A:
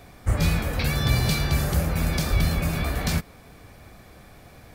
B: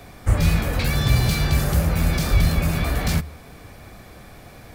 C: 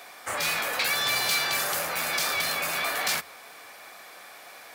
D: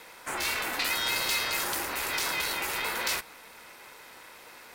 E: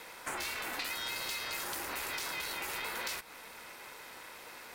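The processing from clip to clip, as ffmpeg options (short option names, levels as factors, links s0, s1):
-filter_complex "[0:a]bandreject=f=75.09:t=h:w=4,bandreject=f=150.18:t=h:w=4,acrossover=split=150[s0][s1];[s1]asoftclip=type=tanh:threshold=0.0473[s2];[s0][s2]amix=inputs=2:normalize=0,volume=1.78"
-af "highpass=820,volume=1.41"
-af "aeval=exprs='val(0)*sin(2*PI*230*n/s)':c=same"
-af "acompressor=threshold=0.0178:ratio=5"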